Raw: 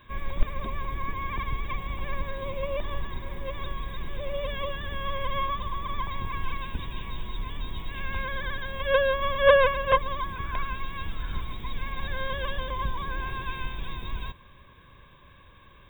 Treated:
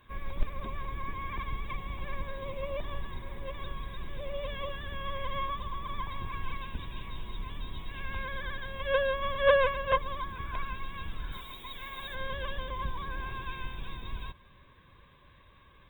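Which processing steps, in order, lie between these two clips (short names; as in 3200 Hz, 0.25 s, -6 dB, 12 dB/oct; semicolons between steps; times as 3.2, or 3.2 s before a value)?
11.32–12.15 tone controls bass -11 dB, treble +12 dB; gain -5 dB; Opus 24 kbps 48000 Hz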